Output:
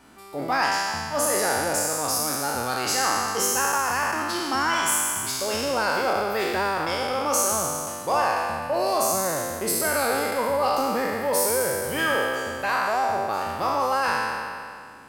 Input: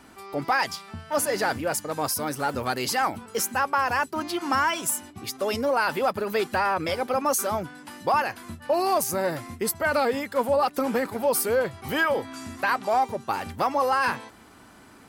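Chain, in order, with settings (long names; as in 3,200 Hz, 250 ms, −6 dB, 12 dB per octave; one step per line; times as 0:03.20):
peak hold with a decay on every bin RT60 2.22 s
dynamic equaliser 6,700 Hz, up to +6 dB, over −40 dBFS, Q 1.3
in parallel at −10 dB: soft clipping −15.5 dBFS, distortion −14 dB
on the sum: level −6.5 dB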